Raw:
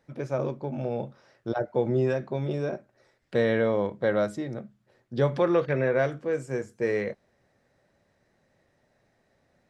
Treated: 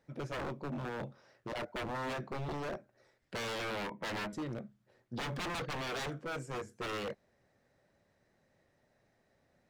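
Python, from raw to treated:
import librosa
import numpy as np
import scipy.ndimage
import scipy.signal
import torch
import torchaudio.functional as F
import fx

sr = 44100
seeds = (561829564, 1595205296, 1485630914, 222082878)

y = fx.cabinet(x, sr, low_hz=170.0, low_slope=12, high_hz=2700.0, hz=(240.0, 450.0, 950.0, 1400.0, 2100.0), db=(5, -5, 10, -7, 6), at=(3.7, 4.33))
y = 10.0 ** (-28.5 / 20.0) * (np.abs((y / 10.0 ** (-28.5 / 20.0) + 3.0) % 4.0 - 2.0) - 1.0)
y = y * librosa.db_to_amplitude(-4.5)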